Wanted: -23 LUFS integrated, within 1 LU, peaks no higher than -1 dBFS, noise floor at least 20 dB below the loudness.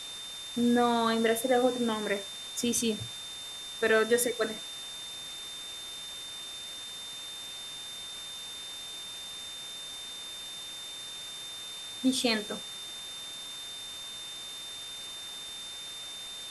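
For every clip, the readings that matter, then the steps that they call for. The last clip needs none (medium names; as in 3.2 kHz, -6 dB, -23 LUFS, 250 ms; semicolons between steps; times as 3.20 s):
steady tone 3.6 kHz; tone level -40 dBFS; noise floor -42 dBFS; noise floor target -53 dBFS; loudness -33.0 LUFS; peak level -12.5 dBFS; loudness target -23.0 LUFS
-> band-stop 3.6 kHz, Q 30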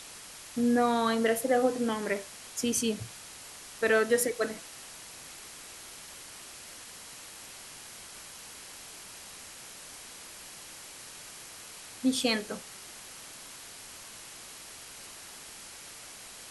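steady tone not found; noise floor -47 dBFS; noise floor target -49 dBFS
-> noise reduction 6 dB, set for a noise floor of -47 dBFS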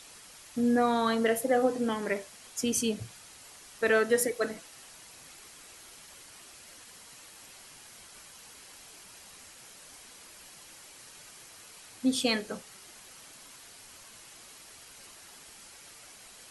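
noise floor -52 dBFS; loudness -29.0 LUFS; peak level -13.0 dBFS; loudness target -23.0 LUFS
-> trim +6 dB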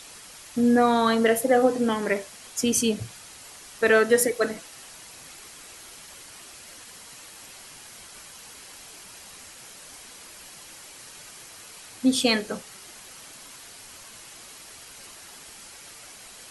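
loudness -23.0 LUFS; peak level -7.0 dBFS; noise floor -46 dBFS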